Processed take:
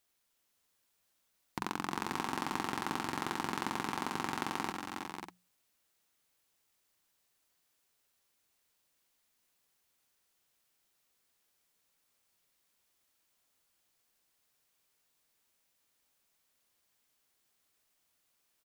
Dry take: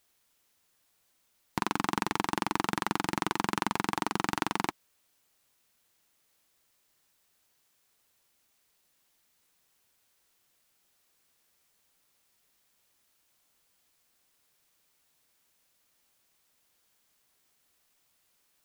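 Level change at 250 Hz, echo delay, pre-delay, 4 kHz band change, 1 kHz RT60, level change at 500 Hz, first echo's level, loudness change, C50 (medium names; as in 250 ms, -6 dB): -6.0 dB, 68 ms, no reverb, -5.0 dB, no reverb, -5.5 dB, -11.0 dB, -6.0 dB, no reverb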